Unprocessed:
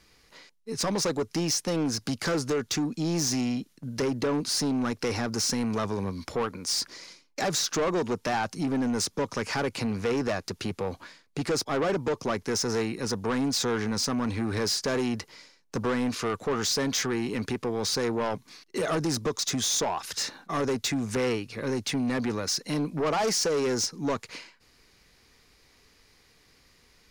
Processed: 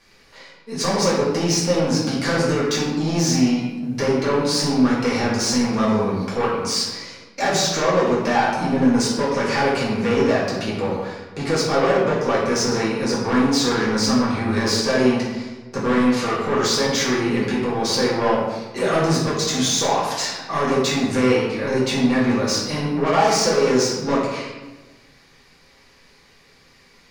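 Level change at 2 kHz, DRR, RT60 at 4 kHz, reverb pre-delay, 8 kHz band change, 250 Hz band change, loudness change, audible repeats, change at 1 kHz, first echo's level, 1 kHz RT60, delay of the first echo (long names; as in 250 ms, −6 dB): +9.5 dB, −7.5 dB, 0.75 s, 4 ms, +5.0 dB, +9.0 dB, +8.5 dB, no echo audible, +10.5 dB, no echo audible, 1.1 s, no echo audible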